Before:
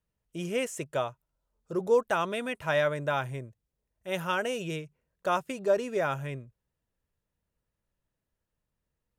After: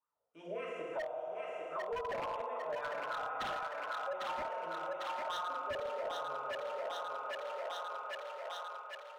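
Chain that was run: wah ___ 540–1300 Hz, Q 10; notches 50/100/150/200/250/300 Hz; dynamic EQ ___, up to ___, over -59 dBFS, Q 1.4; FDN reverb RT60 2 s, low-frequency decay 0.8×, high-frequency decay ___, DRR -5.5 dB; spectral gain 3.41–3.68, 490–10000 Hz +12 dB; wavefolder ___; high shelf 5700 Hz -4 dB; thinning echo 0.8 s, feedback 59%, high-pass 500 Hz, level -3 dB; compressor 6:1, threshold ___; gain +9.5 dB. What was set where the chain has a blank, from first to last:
3.6 Hz, 2900 Hz, +6 dB, 0.85×, -29 dBFS, -47 dBFS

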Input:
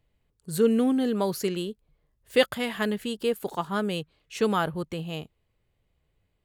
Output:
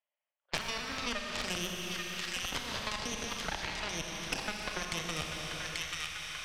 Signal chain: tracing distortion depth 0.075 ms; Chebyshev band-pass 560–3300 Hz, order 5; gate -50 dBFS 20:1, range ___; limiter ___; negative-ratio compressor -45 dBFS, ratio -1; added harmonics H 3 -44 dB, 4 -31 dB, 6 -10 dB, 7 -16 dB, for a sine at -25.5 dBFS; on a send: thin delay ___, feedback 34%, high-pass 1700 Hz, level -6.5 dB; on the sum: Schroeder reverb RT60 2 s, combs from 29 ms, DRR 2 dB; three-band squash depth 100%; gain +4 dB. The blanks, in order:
-35 dB, -21.5 dBFS, 0.837 s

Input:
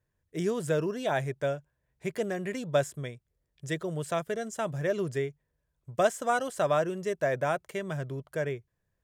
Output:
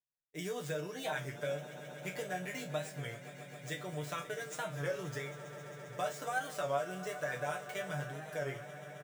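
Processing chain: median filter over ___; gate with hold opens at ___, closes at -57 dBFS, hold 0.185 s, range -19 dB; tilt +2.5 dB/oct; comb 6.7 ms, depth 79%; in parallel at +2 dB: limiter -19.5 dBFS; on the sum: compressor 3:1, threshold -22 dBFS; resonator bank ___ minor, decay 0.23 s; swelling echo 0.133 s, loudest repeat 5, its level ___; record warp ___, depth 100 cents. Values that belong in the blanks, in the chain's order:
5 samples, -51 dBFS, B2, -17.5 dB, 33 1/3 rpm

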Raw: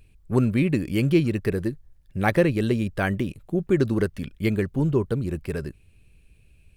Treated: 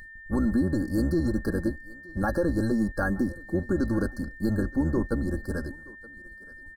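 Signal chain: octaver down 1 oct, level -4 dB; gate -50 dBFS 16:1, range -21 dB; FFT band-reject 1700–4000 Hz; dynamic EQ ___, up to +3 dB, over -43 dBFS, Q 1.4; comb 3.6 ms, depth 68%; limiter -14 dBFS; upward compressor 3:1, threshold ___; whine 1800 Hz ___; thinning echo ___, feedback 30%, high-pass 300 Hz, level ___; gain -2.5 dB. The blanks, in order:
1600 Hz, -42 dBFS, -41 dBFS, 0.923 s, -20.5 dB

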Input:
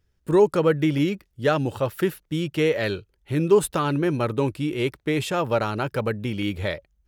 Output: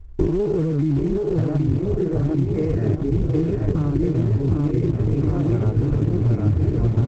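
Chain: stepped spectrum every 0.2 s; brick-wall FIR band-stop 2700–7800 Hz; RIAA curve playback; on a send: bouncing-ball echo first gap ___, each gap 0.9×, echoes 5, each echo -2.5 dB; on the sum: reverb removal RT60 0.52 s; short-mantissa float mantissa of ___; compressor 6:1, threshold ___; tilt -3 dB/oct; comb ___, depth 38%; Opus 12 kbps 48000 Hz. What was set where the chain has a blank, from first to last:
0.77 s, 2-bit, -23 dBFS, 2.8 ms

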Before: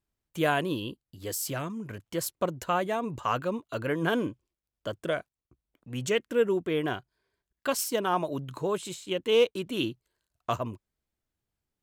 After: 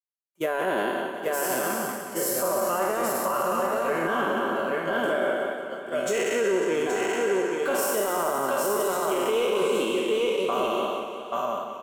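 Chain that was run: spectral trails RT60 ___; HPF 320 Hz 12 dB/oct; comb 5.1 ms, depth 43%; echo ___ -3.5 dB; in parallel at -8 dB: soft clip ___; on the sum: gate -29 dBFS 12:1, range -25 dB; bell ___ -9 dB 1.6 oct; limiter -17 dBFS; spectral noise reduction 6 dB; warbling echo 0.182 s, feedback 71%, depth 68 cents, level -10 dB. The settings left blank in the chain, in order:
2.25 s, 0.825 s, -22.5 dBFS, 4000 Hz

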